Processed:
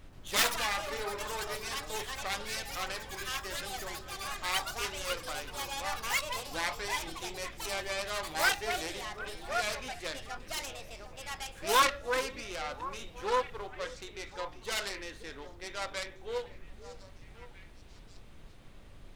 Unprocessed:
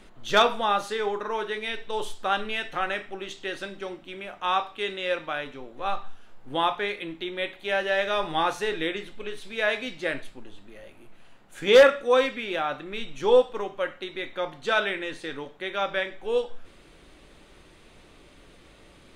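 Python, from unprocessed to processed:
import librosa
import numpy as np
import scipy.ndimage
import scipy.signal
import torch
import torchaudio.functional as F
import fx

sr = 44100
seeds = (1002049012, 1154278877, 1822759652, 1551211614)

y = fx.self_delay(x, sr, depth_ms=0.47)
y = fx.low_shelf(y, sr, hz=300.0, db=-9.0)
y = fx.echo_stepped(y, sr, ms=534, hz=310.0, octaves=1.4, feedback_pct=70, wet_db=-9.5)
y = fx.dmg_noise_colour(y, sr, seeds[0], colour='brown', level_db=-42.0)
y = fx.echo_pitch(y, sr, ms=130, semitones=6, count=3, db_per_echo=-3.0)
y = y * librosa.db_to_amplitude(-8.0)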